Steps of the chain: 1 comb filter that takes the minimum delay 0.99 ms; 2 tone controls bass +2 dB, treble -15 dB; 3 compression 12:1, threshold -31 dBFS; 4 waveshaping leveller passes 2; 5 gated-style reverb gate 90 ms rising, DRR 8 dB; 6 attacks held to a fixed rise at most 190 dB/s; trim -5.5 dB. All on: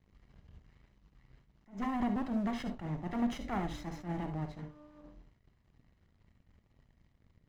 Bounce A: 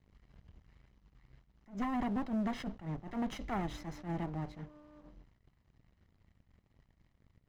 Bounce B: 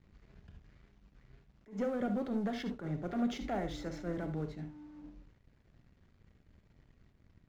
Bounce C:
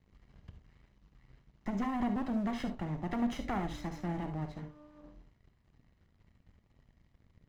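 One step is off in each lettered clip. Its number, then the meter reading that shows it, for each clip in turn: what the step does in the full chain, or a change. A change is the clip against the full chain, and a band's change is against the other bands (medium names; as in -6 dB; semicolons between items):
5, momentary loudness spread change -3 LU; 1, 500 Hz band +6.5 dB; 6, momentary loudness spread change -5 LU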